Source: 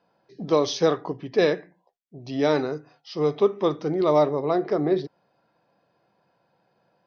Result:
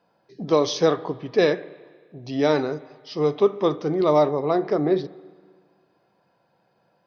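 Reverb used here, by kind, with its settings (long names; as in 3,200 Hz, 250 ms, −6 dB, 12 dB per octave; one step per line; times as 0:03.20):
spring reverb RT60 1.7 s, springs 32/37/41 ms, chirp 50 ms, DRR 17.5 dB
level +1.5 dB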